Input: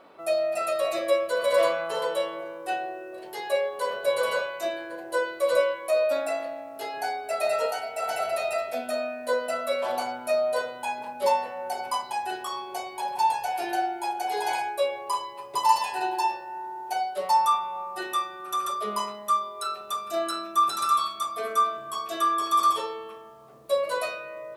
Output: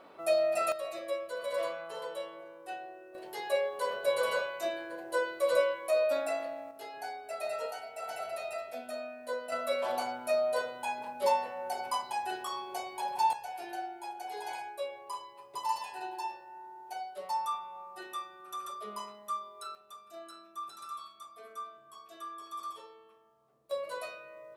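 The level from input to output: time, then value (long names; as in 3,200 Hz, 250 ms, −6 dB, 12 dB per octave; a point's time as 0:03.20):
−2 dB
from 0:00.72 −12 dB
from 0:03.15 −4.5 dB
from 0:06.71 −10.5 dB
from 0:09.52 −4.5 dB
from 0:13.33 −12 dB
from 0:19.75 −19.5 dB
from 0:23.71 −11 dB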